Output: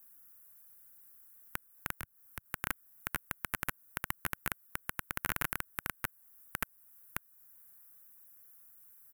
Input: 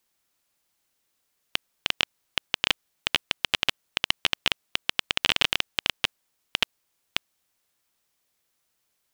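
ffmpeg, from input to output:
ffmpeg -i in.wav -filter_complex "[0:a]alimiter=limit=-11.5dB:level=0:latency=1:release=353,firequalizer=gain_entry='entry(100,0);entry(520,-12);entry(1500,-1);entry(3200,-28);entry(6700,-9);entry(12000,11)':delay=0.05:min_phase=1,asettb=1/sr,asplit=3[link_01][link_02][link_03];[link_01]atrim=end=1.914[link_04];[link_02]atrim=start=1.91:end=2.46,asetpts=PTS-STARTPTS,afade=type=in:duration=0.004:curve=qsin,afade=type=out:start_time=0.546:duration=0.004:curve=qsin,acrossover=split=140[link_05][link_06];[link_06]acompressor=threshold=-47dB:ratio=10[link_07];[link_05][link_07]amix=inputs=2:normalize=0[link_08];[link_03]atrim=start=2.456[link_09];[link_04][link_08]acrossfade=duration=0.004:curve1=hsin:curve2=qsin[link_10];[link_10][link_09]acrossfade=duration=0.004:curve1=qsin:curve2=hsin,volume=8.5dB" out.wav

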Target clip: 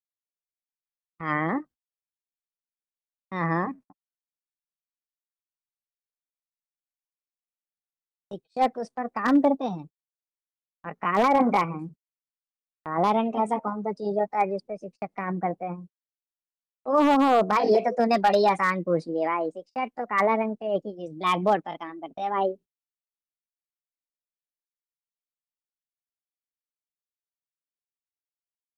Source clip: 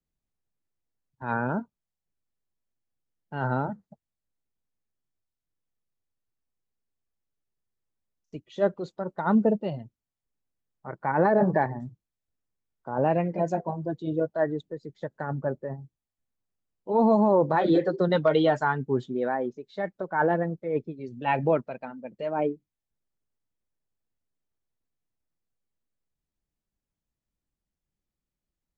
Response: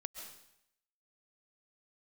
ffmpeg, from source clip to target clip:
-af "agate=range=-39dB:threshold=-46dB:ratio=16:detection=peak,asetrate=57191,aresample=44100,atempo=0.771105,aeval=exprs='0.211*(abs(mod(val(0)/0.211+3,4)-2)-1)':channel_layout=same,volume=1.5dB"

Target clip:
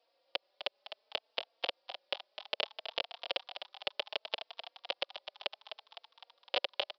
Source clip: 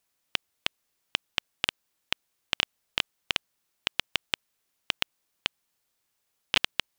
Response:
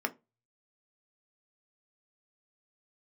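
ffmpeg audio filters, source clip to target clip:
-filter_complex "[0:a]equalizer=frequency=1700:width=0.73:gain=-9,alimiter=limit=-19dB:level=0:latency=1:release=79,aresample=11025,aresample=44100,highpass=frequency=560:width_type=q:width=4.9,asplit=9[link_01][link_02][link_03][link_04][link_05][link_06][link_07][link_08][link_09];[link_02]adelay=255,afreqshift=74,volume=-9.5dB[link_10];[link_03]adelay=510,afreqshift=148,volume=-13.8dB[link_11];[link_04]adelay=765,afreqshift=222,volume=-18.1dB[link_12];[link_05]adelay=1020,afreqshift=296,volume=-22.4dB[link_13];[link_06]adelay=1275,afreqshift=370,volume=-26.7dB[link_14];[link_07]adelay=1530,afreqshift=444,volume=-31dB[link_15];[link_08]adelay=1785,afreqshift=518,volume=-35.3dB[link_16];[link_09]adelay=2040,afreqshift=592,volume=-39.6dB[link_17];[link_01][link_10][link_11][link_12][link_13][link_14][link_15][link_16][link_17]amix=inputs=9:normalize=0,asplit=2[link_18][link_19];[link_19]adelay=3.9,afreqshift=0.65[link_20];[link_18][link_20]amix=inputs=2:normalize=1,volume=11dB"

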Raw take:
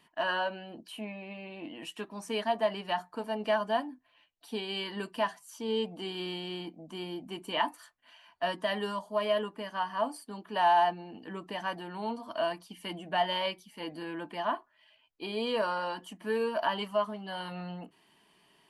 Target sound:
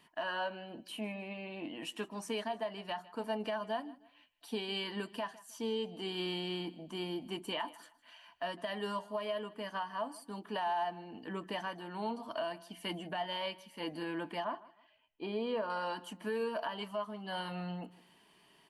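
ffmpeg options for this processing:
ffmpeg -i in.wav -filter_complex "[0:a]asettb=1/sr,asplit=3[link_01][link_02][link_03];[link_01]atrim=end=14.444[link_04];[link_02]atrim=start=14.44:end=15.7,asetpts=PTS-STARTPTS,afade=type=in:duration=0.004:curve=qsin,afade=type=out:start_time=1.256:duration=0.004:curve=qsin,lowpass=frequency=1300:poles=1[link_05];[link_03]atrim=start=15.696[link_06];[link_04][link_05]acrossfade=duration=0.004:curve1=hsin:curve2=qsin[link_07];[link_07][link_06]acrossfade=duration=0.004:curve1=qsin:curve2=hsin,alimiter=level_in=3dB:limit=-24dB:level=0:latency=1:release=409,volume=-3dB,aecho=1:1:156|312:0.1|0.031" out.wav

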